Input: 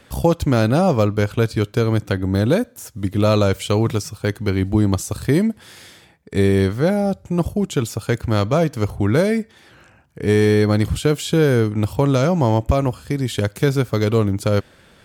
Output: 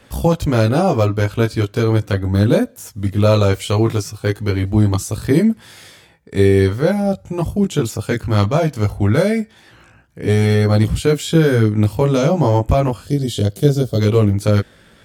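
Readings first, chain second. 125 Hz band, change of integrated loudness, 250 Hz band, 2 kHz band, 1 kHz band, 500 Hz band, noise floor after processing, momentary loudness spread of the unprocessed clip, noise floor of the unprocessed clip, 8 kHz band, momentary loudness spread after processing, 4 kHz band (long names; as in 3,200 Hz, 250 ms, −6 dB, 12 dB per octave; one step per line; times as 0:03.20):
+3.5 dB, +2.5 dB, +2.0 dB, +1.0 dB, +1.5 dB, +2.0 dB, −49 dBFS, 7 LU, −51 dBFS, +1.5 dB, 7 LU, +1.5 dB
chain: gain on a spectral selection 0:13.06–0:14.00, 740–2,800 Hz −12 dB
multi-voice chorus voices 2, 0.19 Hz, delay 19 ms, depth 1.6 ms
level +4.5 dB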